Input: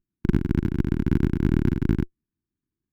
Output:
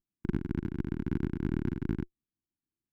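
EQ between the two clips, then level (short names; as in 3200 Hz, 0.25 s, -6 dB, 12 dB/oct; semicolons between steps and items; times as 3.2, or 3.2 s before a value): low shelf 180 Hz -5 dB; high shelf 3600 Hz -8 dB; -7.5 dB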